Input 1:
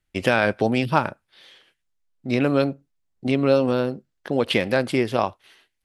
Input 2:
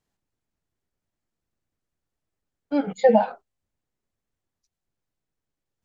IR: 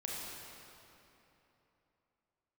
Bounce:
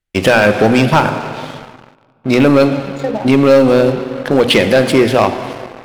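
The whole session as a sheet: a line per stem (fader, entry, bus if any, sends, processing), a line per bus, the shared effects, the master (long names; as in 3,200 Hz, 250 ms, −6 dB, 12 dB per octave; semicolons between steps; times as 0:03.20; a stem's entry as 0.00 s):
+0.5 dB, 0.00 s, send −10 dB, mains-hum notches 60/120/180/240/300 Hz
−9.0 dB, 0.00 s, no send, downward compressor, threshold −19 dBFS, peak gain reduction 8 dB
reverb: on, RT60 3.2 s, pre-delay 28 ms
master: leveller curve on the samples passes 3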